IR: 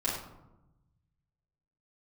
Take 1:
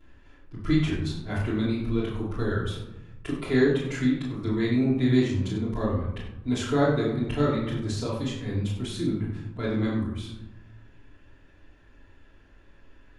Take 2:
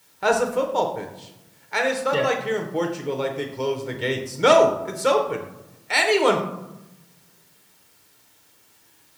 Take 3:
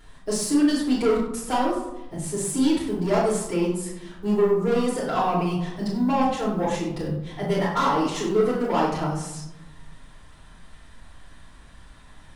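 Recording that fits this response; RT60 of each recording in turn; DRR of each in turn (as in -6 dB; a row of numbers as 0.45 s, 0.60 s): 3; 0.95 s, 0.95 s, 0.95 s; -13.5 dB, 2.5 dB, -7.5 dB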